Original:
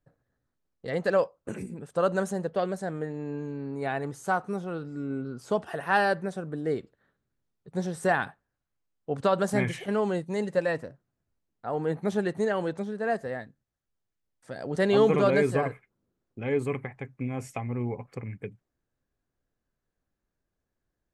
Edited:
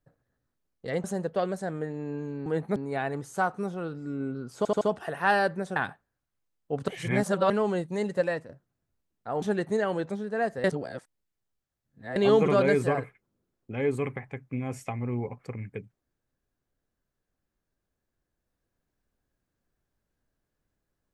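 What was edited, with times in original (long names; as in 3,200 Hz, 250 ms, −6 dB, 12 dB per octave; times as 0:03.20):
0:01.04–0:02.24: remove
0:05.47: stutter 0.08 s, 4 plays
0:06.42–0:08.14: remove
0:09.26–0:09.88: reverse
0:10.54–0:10.87: fade out equal-power, to −10 dB
0:11.80–0:12.10: move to 0:03.66
0:13.32–0:14.84: reverse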